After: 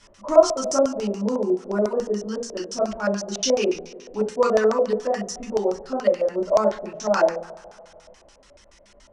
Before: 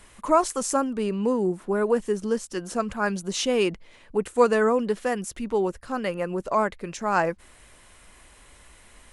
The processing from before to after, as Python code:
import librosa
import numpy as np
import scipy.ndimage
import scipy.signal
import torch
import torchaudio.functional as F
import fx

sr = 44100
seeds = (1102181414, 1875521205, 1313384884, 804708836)

y = fx.dereverb_blind(x, sr, rt60_s=0.81)
y = fx.rev_double_slope(y, sr, seeds[0], early_s=0.37, late_s=2.3, knee_db=-20, drr_db=-6.5)
y = fx.filter_lfo_lowpass(y, sr, shape='square', hz=7.0, low_hz=610.0, high_hz=5700.0, q=5.8)
y = F.gain(torch.from_numpy(y), -8.0).numpy()